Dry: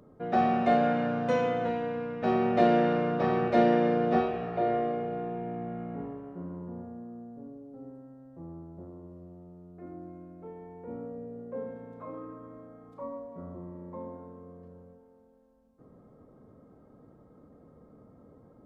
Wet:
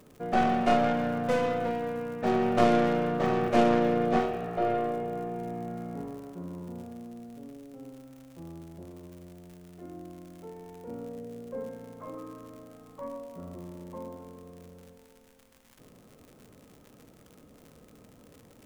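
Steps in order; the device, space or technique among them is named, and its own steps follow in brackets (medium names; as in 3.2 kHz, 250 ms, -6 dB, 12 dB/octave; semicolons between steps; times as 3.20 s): record under a worn stylus (tracing distortion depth 0.23 ms; crackle 100 per s -41 dBFS; pink noise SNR 35 dB); peaking EQ 4.4 kHz -3.5 dB 0.77 oct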